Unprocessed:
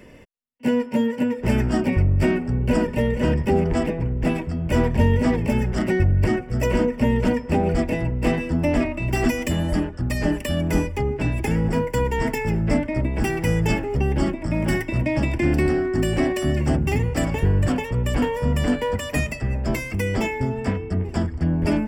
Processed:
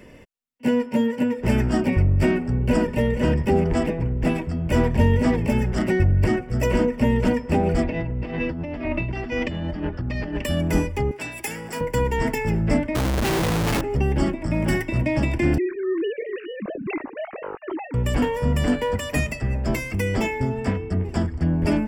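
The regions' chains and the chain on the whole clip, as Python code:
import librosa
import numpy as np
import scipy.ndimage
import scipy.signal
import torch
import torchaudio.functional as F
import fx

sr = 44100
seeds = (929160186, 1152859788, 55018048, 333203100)

y = fx.chain(x, sr, fx.lowpass(hz=4400.0, slope=24),
    fx.over_compress(threshold_db=-27.0, ratio=-1.0), at=(7.84, 10.45))
y = fx.chain(y, sr, fx.highpass(hz=1100.0, slope=6),
    fx.high_shelf(hz=6200.0, db=11.0), at=(11.11, 11.81))
y = fx.chain(y, sr, fx.lowpass(hz=2100.0, slope=6),
    fx.schmitt(flips_db=-37.5), at=(12.95, 13.81))
y = fx.chain(y, sr, fx.sine_speech(),
    fx.lowpass(hz=1300.0, slope=6),
    fx.comb_cascade(direction='falling', hz=1.4), at=(15.58, 17.94))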